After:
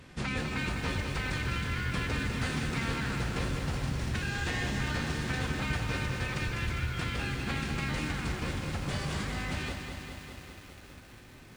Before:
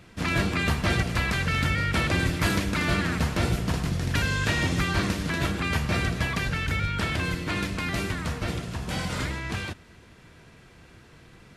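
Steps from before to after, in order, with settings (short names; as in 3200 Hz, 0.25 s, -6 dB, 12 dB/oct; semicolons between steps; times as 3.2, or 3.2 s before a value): compressor 3:1, threshold -32 dBFS, peak gain reduction 10 dB; formant-preserving pitch shift -4.5 st; lo-fi delay 0.201 s, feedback 80%, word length 9-bit, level -6.5 dB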